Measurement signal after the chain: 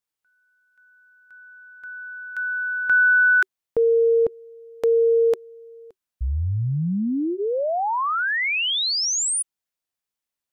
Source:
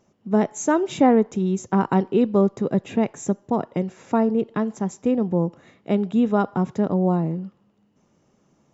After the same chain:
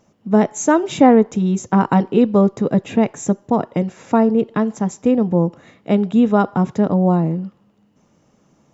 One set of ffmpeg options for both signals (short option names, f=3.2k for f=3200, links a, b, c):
-af "bandreject=f=380:w=12,volume=5.5dB"